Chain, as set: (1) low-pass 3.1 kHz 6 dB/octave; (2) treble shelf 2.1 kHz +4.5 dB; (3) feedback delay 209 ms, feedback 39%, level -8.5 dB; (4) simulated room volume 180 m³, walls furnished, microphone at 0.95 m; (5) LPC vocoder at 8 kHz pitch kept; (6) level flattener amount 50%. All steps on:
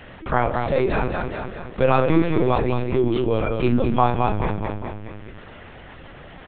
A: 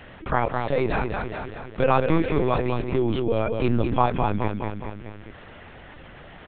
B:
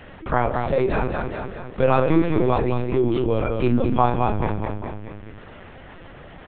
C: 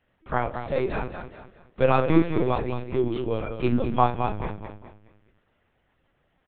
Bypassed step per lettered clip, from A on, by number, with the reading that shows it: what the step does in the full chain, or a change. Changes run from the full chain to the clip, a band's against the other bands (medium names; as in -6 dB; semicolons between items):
4, momentary loudness spread change +2 LU; 2, 4 kHz band -3.0 dB; 6, crest factor change +2.0 dB